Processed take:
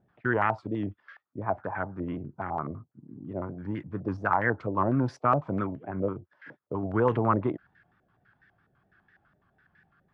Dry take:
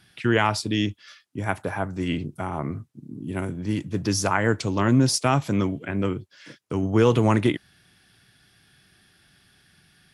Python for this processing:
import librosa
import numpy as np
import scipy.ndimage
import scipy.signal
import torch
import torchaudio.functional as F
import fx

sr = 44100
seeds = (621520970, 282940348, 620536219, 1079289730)

y = fx.vibrato(x, sr, rate_hz=4.3, depth_cents=82.0)
y = fx.filter_held_lowpass(y, sr, hz=12.0, low_hz=590.0, high_hz=1700.0)
y = y * 10.0 ** (-8.0 / 20.0)